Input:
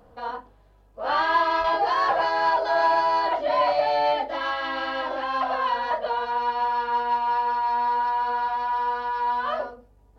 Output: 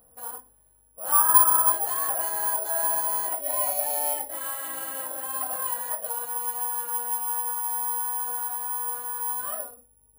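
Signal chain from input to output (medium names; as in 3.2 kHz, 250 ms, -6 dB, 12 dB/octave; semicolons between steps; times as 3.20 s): 1.12–1.72 s: FFT filter 730 Hz 0 dB, 1.1 kHz +13 dB, 3.5 kHz -24 dB, 6.3 kHz -30 dB; careless resampling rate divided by 4×, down none, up zero stuff; trim -11 dB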